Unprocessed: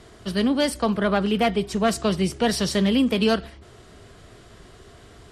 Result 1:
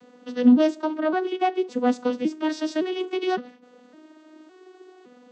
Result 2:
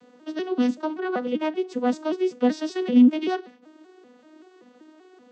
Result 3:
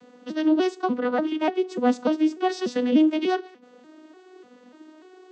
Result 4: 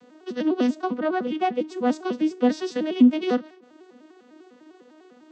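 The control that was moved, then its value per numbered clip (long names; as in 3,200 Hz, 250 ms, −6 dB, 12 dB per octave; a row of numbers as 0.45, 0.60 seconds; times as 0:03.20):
vocoder with an arpeggio as carrier, a note every: 561, 192, 295, 100 milliseconds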